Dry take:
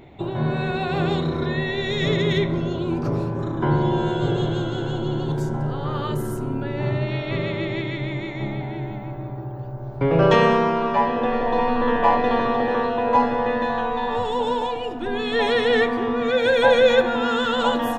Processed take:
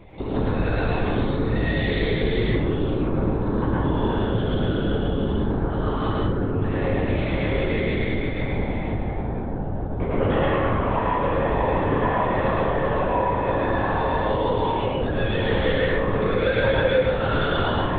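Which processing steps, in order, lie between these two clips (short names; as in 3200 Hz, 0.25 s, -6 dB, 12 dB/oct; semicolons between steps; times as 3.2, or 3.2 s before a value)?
compressor 4:1, threshold -25 dBFS, peak gain reduction 12 dB; LPC vocoder at 8 kHz whisper; plate-style reverb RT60 0.67 s, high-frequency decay 0.6×, pre-delay 95 ms, DRR -4 dB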